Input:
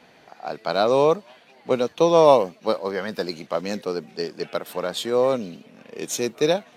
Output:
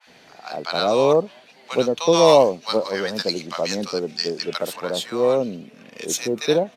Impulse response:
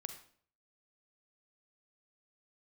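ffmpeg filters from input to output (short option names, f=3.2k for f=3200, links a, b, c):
-filter_complex "[0:a]asetnsamples=n=441:p=0,asendcmd='2.13 equalizer g 12;4.76 equalizer g 2.5',equalizer=f=5.8k:w=0.5:g=5.5,volume=3.5dB,asoftclip=hard,volume=-3.5dB,acrossover=split=940[a][b];[a]adelay=70[c];[c][b]amix=inputs=2:normalize=0,adynamicequalizer=threshold=0.00891:dfrequency=1800:dqfactor=0.7:tfrequency=1800:tqfactor=0.7:attack=5:release=100:ratio=0.375:range=1.5:mode=cutabove:tftype=highshelf,volume=2dB"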